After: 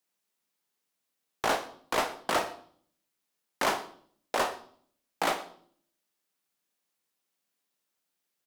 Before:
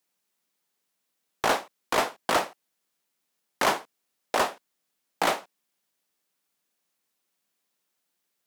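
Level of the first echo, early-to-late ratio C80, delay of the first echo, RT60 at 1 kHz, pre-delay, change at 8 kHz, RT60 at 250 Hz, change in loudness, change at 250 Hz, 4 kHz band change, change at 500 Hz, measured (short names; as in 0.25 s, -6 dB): -21.0 dB, 16.5 dB, 0.118 s, 0.55 s, 14 ms, -3.5 dB, 0.80 s, -3.5 dB, -3.0 dB, -3.5 dB, -3.5 dB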